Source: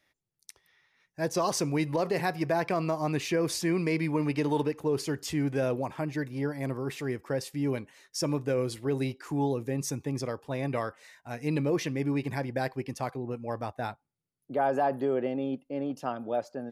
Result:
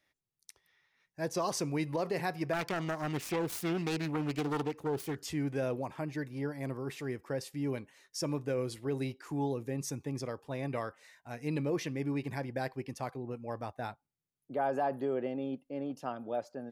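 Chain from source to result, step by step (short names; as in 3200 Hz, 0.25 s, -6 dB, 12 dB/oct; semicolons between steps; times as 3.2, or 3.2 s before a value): 2.53–5.17 self-modulated delay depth 0.34 ms; gain -5 dB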